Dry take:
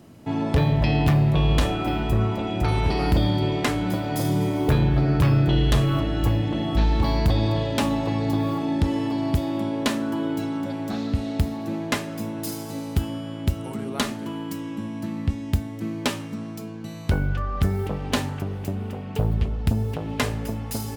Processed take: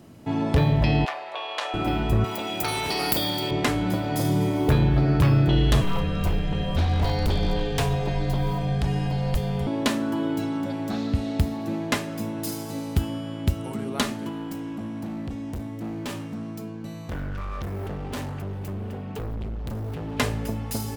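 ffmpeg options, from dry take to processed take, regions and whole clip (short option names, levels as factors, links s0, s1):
-filter_complex "[0:a]asettb=1/sr,asplit=3[s0][s1][s2];[s0]atrim=end=1.054[s3];[s1]atrim=start=1.05:end=1.74,asetpts=PTS-STARTPTS,afade=t=in:d=0.004:c=qsin,afade=t=out:st=0.686:d=0.004:c=qsin,highpass=f=630:w=0.5412,highpass=f=630:w=1.3066,adynamicsmooth=sensitivity=0.5:basefreq=5900[s4];[s2]atrim=start=1.736[s5];[s3][s4]acrossfade=d=0.004:c1=hsin:c2=qsin[s6];[s6][s5]acrossfade=d=0.004:c1=qsin:c2=hsin,asettb=1/sr,asplit=3[s7][s8][s9];[s7]atrim=end=2.244[s10];[s8]atrim=start=2.24:end=3.51,asetpts=PTS-STARTPTS,afade=t=in:d=0.004:c=qsin,afade=t=out:st=1.266:d=0.004:c=qsin,highpass=73,aemphasis=mode=production:type=riaa[s11];[s9]atrim=start=3.506[s12];[s10][s11]acrossfade=d=0.004:c1=hsin:c2=qsin[s13];[s13][s12]acrossfade=d=0.004:c1=qsin:c2=hsin,asettb=1/sr,asplit=3[s14][s15][s16];[s14]atrim=end=5.814[s17];[s15]atrim=start=5.81:end=9.67,asetpts=PTS-STARTPTS,afade=t=in:d=0.004:c=qsin,afade=t=out:st=3.856:d=0.004:c=qsin,highpass=f=50:p=1,afreqshift=-140,aeval=exprs='0.158*(abs(mod(val(0)/0.158+3,4)-2)-1)':c=same[s18];[s16]atrim=start=9.666[s19];[s17][s18]acrossfade=d=0.004:c1=hsin:c2=qsin[s20];[s20][s19]acrossfade=d=0.004:c1=qsin:c2=hsin,asettb=1/sr,asplit=3[s21][s22][s23];[s21]atrim=end=14.294[s24];[s22]atrim=start=14.29:end=20.17,asetpts=PTS-STARTPTS,afade=t=in:d=0.004:c=qsin,afade=t=out:st=5.876:d=0.004:c=qsin,equalizer=f=5300:w=0.3:g=-4,volume=28.2,asoftclip=hard,volume=0.0355[s25];[s23]atrim=start=20.166[s26];[s24][s25]acrossfade=d=0.004:c1=hsin:c2=qsin[s27];[s27][s26]acrossfade=d=0.004:c1=qsin:c2=hsin"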